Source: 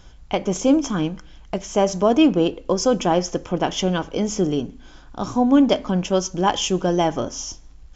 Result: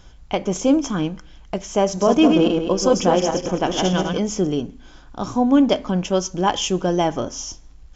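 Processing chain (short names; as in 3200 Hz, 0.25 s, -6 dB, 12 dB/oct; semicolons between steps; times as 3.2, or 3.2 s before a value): 1.87–4.18 regenerating reverse delay 0.103 s, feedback 51%, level -3.5 dB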